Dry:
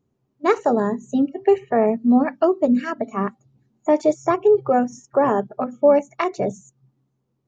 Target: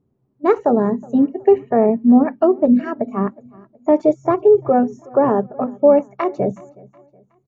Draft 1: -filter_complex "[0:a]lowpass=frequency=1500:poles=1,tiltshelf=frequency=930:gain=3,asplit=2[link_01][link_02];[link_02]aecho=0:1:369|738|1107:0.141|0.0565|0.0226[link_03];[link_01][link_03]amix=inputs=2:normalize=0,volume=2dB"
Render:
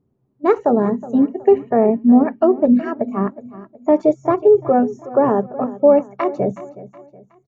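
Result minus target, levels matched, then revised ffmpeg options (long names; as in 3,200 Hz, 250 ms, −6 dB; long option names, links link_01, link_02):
echo-to-direct +7 dB
-filter_complex "[0:a]lowpass=frequency=1500:poles=1,tiltshelf=frequency=930:gain=3,asplit=2[link_01][link_02];[link_02]aecho=0:1:369|738|1107:0.0631|0.0252|0.0101[link_03];[link_01][link_03]amix=inputs=2:normalize=0,volume=2dB"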